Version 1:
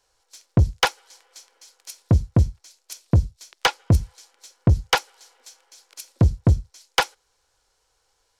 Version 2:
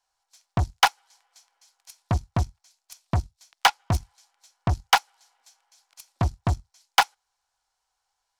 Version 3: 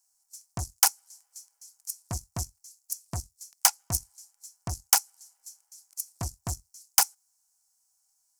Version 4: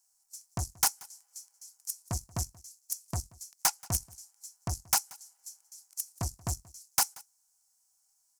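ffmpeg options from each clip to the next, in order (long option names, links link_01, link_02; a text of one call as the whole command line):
ffmpeg -i in.wav -af "aeval=exprs='0.376*(cos(1*acos(clip(val(0)/0.376,-1,1)))-cos(1*PI/2))+0.0119*(cos(6*acos(clip(val(0)/0.376,-1,1)))-cos(6*PI/2))+0.0376*(cos(7*acos(clip(val(0)/0.376,-1,1)))-cos(7*PI/2))':channel_layout=same,lowshelf=frequency=600:width_type=q:width=3:gain=-7" out.wav
ffmpeg -i in.wav -af "aexciter=amount=12.2:drive=7.1:freq=5400,volume=-11dB" out.wav
ffmpeg -i in.wav -af "asoftclip=type=tanh:threshold=-17dB,aecho=1:1:181:0.0668" out.wav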